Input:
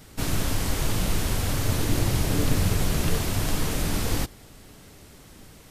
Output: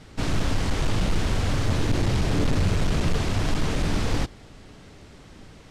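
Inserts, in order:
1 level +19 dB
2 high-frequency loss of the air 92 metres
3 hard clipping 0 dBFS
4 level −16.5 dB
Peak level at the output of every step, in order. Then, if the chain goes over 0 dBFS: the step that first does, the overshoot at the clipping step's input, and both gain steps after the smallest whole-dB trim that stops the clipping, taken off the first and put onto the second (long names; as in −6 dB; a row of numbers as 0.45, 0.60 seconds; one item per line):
+9.0, +8.5, 0.0, −16.5 dBFS
step 1, 8.5 dB
step 1 +10 dB, step 4 −7.5 dB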